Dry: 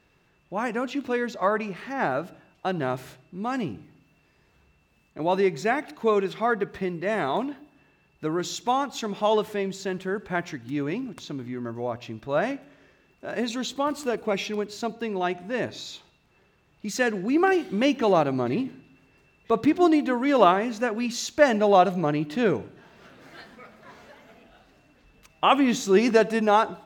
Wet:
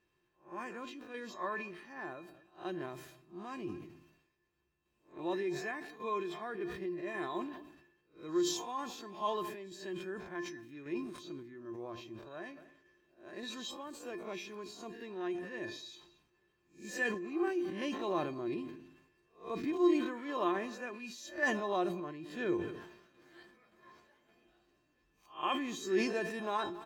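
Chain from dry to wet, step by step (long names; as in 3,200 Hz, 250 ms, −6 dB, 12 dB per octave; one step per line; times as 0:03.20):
peak hold with a rise ahead of every peak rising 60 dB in 0.33 s
tuned comb filter 350 Hz, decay 0.17 s, harmonics odd, mix 90%
slap from a distant wall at 38 metres, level −25 dB
sample-and-hold tremolo
level that may fall only so fast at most 65 dB per second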